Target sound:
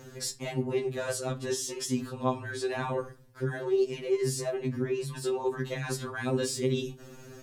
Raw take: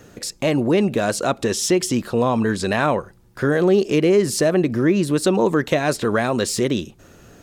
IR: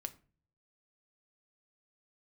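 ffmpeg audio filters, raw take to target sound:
-filter_complex "[0:a]bandreject=frequency=740:width=17,areverse,acompressor=threshold=-27dB:ratio=6,areverse[link_01];[1:a]atrim=start_sample=2205[link_02];[link_01][link_02]afir=irnorm=-1:irlink=0,afftfilt=real='re*2.45*eq(mod(b,6),0)':imag='im*2.45*eq(mod(b,6),0)':win_size=2048:overlap=0.75,volume=3dB"

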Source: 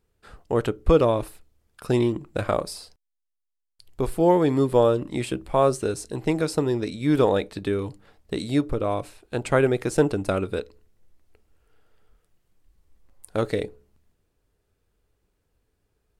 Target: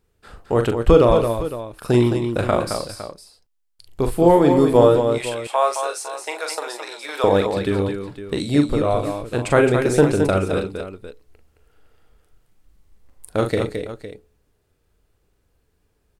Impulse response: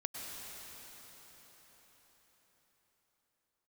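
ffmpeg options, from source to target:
-filter_complex "[0:a]asettb=1/sr,asplit=3[link_01][link_02][link_03];[link_01]atrim=end=4.964[link_04];[link_02]atrim=start=4.96:end=7.24,asetpts=PTS-STARTPTS,afade=type=in:duration=0.004:curve=qsin,afade=type=out:start_time=2.276:duration=0.004:curve=qsin,highpass=frequency=630:width=0.5412,highpass=frequency=630:width=1.3066[link_05];[link_03]atrim=start=7.236[link_06];[link_04][link_05]acrossfade=duration=0.004:curve1=hsin:curve2=qsin[link_07];[link_07][link_06]acrossfade=duration=0.004:curve1=qsin:curve2=hsin,aecho=1:1:41|217|243|508:0.473|0.473|0.15|0.211,volume=4dB"

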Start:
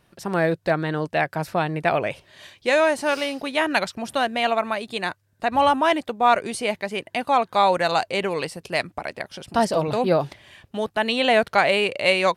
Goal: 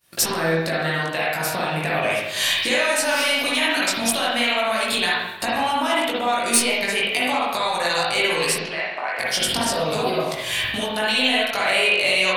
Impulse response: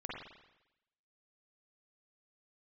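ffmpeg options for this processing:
-filter_complex "[0:a]agate=range=-33dB:threshold=-49dB:ratio=3:detection=peak,dynaudnorm=framelen=460:gausssize=11:maxgain=11.5dB,alimiter=limit=-15.5dB:level=0:latency=1:release=298,acompressor=threshold=-42dB:ratio=4,crystalizer=i=9.5:c=0,aeval=exprs='0.398*(cos(1*acos(clip(val(0)/0.398,-1,1)))-cos(1*PI/2))+0.178*(cos(5*acos(clip(val(0)/0.398,-1,1)))-cos(5*PI/2))+0.00794*(cos(6*acos(clip(val(0)/0.398,-1,1)))-cos(6*PI/2))':channel_layout=same,flanger=delay=17.5:depth=3.7:speed=0.38,asettb=1/sr,asplit=3[link_01][link_02][link_03];[link_01]atrim=end=8.584[link_04];[link_02]atrim=start=8.58:end=9.19,asetpts=PTS-STARTPTS,afade=type=in:duration=0.004:curve=qsin,afade=type=out:start_time=0.606:duration=0.004:curve=qsin,highpass=580,lowpass=2100[link_05];[link_03]atrim=start=9.186[link_06];[link_04][link_05]acrossfade=duration=0.004:curve1=hsin:curve2=qsin[link_07];[link_07][link_06]acrossfade=duration=0.004:curve1=qsin:curve2=hsin[link_08];[1:a]atrim=start_sample=2205[link_09];[link_08][link_09]afir=irnorm=-1:irlink=0,volume=8dB"

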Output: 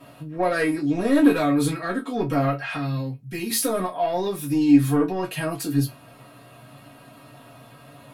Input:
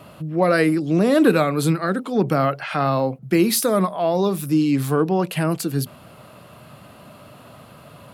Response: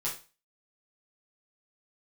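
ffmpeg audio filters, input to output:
-filter_complex "[0:a]asettb=1/sr,asplit=3[link_01][link_02][link_03];[link_01]atrim=end=2.764[link_04];[link_02]atrim=start=2.76:end=3.5,asetpts=PTS-STARTPTS,afade=type=in:duration=0.004:curve=qsin,afade=type=out:start_time=0.736:duration=0.004:curve=qsin,equalizer=frequency=760:width_type=o:width=2.5:gain=-14[link_05];[link_03]atrim=start=3.496[link_06];[link_04][link_05]acrossfade=duration=0.004:curve1=hsin:curve2=qsin[link_07];[link_07][link_06]acrossfade=duration=0.004:curve1=qsin:curve2=hsin,asoftclip=type=tanh:threshold=-10dB[link_08];[1:a]atrim=start_sample=2205,asetrate=83790,aresample=44100[link_09];[link_08][link_09]afir=irnorm=-1:irlink=0" -ar 44100 -c:a sbc -b:a 192k

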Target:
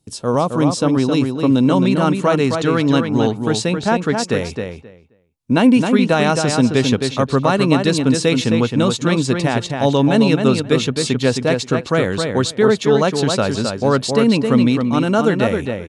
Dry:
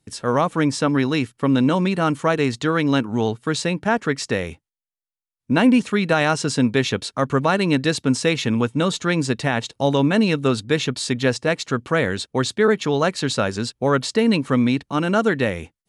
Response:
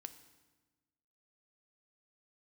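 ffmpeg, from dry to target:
-filter_complex "[0:a]asetnsamples=nb_out_samples=441:pad=0,asendcmd='1.63 equalizer g -5.5',equalizer=frequency=1800:width=1.5:gain=-13,asplit=2[link_01][link_02];[link_02]adelay=265,lowpass=frequency=3600:poles=1,volume=-5dB,asplit=2[link_03][link_04];[link_04]adelay=265,lowpass=frequency=3600:poles=1,volume=0.16,asplit=2[link_05][link_06];[link_06]adelay=265,lowpass=frequency=3600:poles=1,volume=0.16[link_07];[link_01][link_03][link_05][link_07]amix=inputs=4:normalize=0,volume=3.5dB"

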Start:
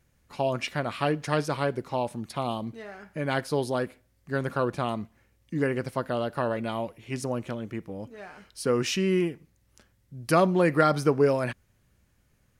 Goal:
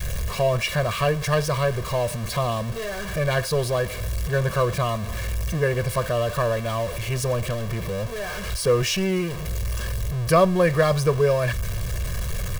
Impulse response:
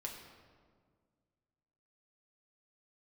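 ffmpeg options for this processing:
-af "aeval=exprs='val(0)+0.5*0.0335*sgn(val(0))':channel_layout=same,lowshelf=frequency=110:gain=9.5,aecho=1:1:1.8:0.89,adynamicequalizer=threshold=0.0282:dfrequency=340:dqfactor=0.75:tfrequency=340:tqfactor=0.75:attack=5:release=100:ratio=0.375:range=2:mode=cutabove:tftype=bell"

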